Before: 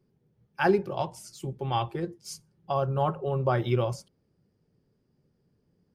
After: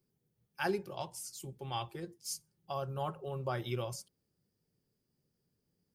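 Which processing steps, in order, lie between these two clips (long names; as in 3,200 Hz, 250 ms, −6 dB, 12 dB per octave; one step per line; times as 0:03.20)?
first-order pre-emphasis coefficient 0.8
level +2.5 dB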